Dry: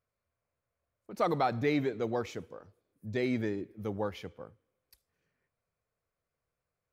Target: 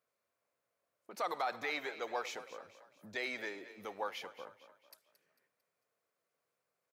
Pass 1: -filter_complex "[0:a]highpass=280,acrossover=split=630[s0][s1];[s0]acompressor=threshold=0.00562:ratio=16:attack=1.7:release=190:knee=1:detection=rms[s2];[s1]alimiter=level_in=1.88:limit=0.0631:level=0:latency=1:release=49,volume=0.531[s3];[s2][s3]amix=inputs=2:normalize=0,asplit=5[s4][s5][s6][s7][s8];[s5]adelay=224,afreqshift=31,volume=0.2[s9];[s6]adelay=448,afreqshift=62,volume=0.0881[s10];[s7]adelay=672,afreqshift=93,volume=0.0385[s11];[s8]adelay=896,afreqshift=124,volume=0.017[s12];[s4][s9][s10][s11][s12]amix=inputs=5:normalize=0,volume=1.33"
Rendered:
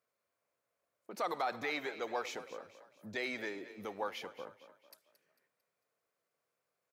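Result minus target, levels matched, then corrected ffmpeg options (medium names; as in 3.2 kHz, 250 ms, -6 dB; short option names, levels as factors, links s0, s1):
compression: peak gain reduction -6.5 dB
-filter_complex "[0:a]highpass=280,acrossover=split=630[s0][s1];[s0]acompressor=threshold=0.00251:ratio=16:attack=1.7:release=190:knee=1:detection=rms[s2];[s1]alimiter=level_in=1.88:limit=0.0631:level=0:latency=1:release=49,volume=0.531[s3];[s2][s3]amix=inputs=2:normalize=0,asplit=5[s4][s5][s6][s7][s8];[s5]adelay=224,afreqshift=31,volume=0.2[s9];[s6]adelay=448,afreqshift=62,volume=0.0881[s10];[s7]adelay=672,afreqshift=93,volume=0.0385[s11];[s8]adelay=896,afreqshift=124,volume=0.017[s12];[s4][s9][s10][s11][s12]amix=inputs=5:normalize=0,volume=1.33"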